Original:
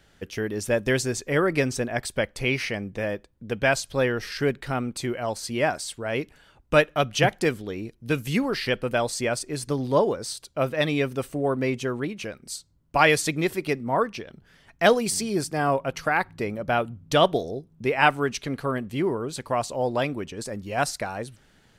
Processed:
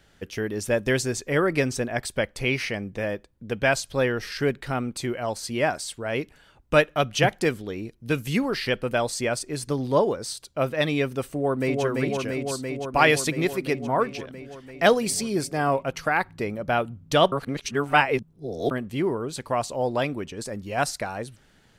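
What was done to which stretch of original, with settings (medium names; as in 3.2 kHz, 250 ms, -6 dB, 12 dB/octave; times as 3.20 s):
11.26–11.83 s: echo throw 340 ms, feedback 80%, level -2.5 dB
17.32–18.71 s: reverse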